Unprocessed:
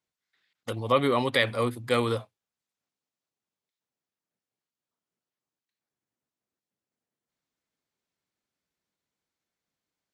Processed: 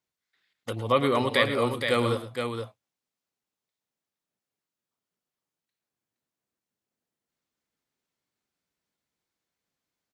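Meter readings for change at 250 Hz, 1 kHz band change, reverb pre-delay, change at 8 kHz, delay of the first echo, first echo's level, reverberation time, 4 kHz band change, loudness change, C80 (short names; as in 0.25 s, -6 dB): +1.0 dB, +1.0 dB, none, +1.0 dB, 0.108 s, -13.0 dB, none, +1.0 dB, +0.5 dB, none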